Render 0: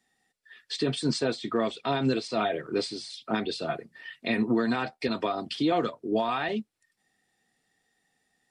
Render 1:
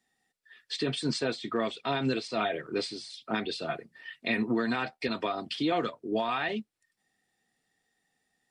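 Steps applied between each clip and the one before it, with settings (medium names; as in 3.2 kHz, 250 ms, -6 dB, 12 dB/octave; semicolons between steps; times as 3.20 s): dynamic bell 2.3 kHz, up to +5 dB, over -42 dBFS, Q 0.82; trim -3.5 dB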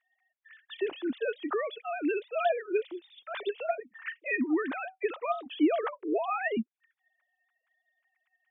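formants replaced by sine waves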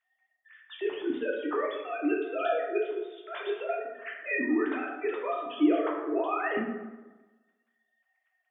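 plate-style reverb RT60 1.2 s, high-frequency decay 0.5×, DRR -2.5 dB; trim -3.5 dB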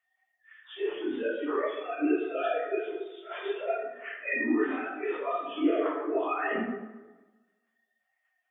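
phase randomisation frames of 100 ms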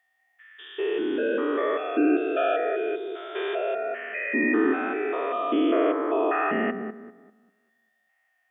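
spectrogram pixelated in time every 200 ms; trim +8 dB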